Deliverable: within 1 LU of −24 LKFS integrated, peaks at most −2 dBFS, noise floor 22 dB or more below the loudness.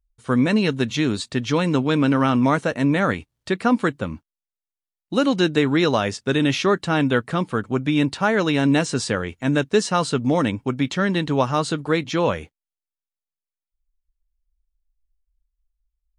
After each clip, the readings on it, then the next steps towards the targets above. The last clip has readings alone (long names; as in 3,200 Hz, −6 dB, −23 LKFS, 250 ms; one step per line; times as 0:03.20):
integrated loudness −21.0 LKFS; sample peak −5.0 dBFS; target loudness −24.0 LKFS
→ level −3 dB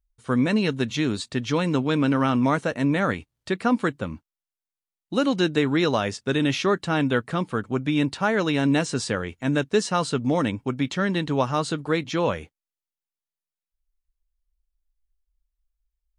integrated loudness −24.0 LKFS; sample peak −8.0 dBFS; background noise floor −92 dBFS